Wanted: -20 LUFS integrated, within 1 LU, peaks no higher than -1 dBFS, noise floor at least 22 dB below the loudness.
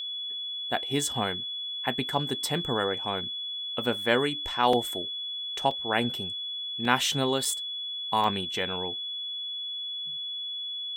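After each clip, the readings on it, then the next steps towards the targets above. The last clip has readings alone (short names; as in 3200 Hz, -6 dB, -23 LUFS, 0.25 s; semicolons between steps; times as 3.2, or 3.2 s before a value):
dropouts 5; longest dropout 3.1 ms; steady tone 3400 Hz; tone level -32 dBFS; loudness -28.5 LUFS; peak -6.5 dBFS; loudness target -20.0 LUFS
-> interpolate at 4.73/5.71/6.85/7.45/8.24, 3.1 ms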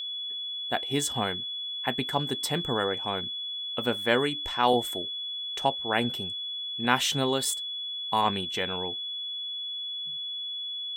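dropouts 0; steady tone 3400 Hz; tone level -32 dBFS
-> notch 3400 Hz, Q 30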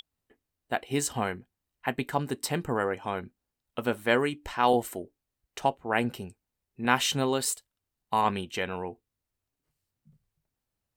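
steady tone none; loudness -29.5 LUFS; peak -7.0 dBFS; loudness target -20.0 LUFS
-> gain +9.5 dB; limiter -1 dBFS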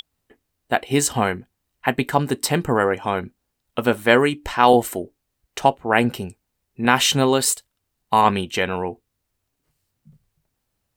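loudness -20.0 LUFS; peak -1.0 dBFS; noise floor -77 dBFS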